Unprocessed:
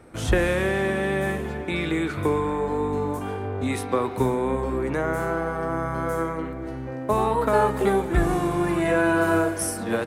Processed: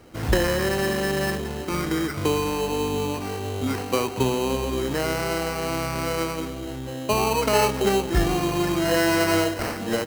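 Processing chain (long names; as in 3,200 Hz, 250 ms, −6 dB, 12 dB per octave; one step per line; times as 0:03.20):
sample-rate reduction 3,500 Hz, jitter 0%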